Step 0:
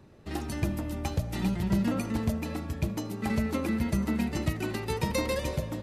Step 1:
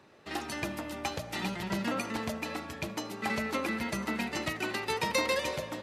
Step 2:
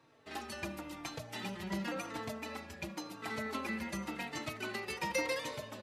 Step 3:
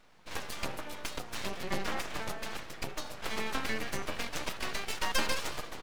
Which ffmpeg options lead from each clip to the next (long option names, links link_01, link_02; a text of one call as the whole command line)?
ffmpeg -i in.wav -af "highpass=frequency=1100:poles=1,highshelf=frequency=7100:gain=-11.5,volume=7dB" out.wav
ffmpeg -i in.wav -filter_complex "[0:a]asplit=2[link_01][link_02];[link_02]adelay=3.9,afreqshift=-0.94[link_03];[link_01][link_03]amix=inputs=2:normalize=1,volume=-3.5dB" out.wav
ffmpeg -i in.wav -af "aeval=exprs='0.0841*(cos(1*acos(clip(val(0)/0.0841,-1,1)))-cos(1*PI/2))+0.0075*(cos(6*acos(clip(val(0)/0.0841,-1,1)))-cos(6*PI/2))':channel_layout=same,aeval=exprs='abs(val(0))':channel_layout=same,volume=6dB" out.wav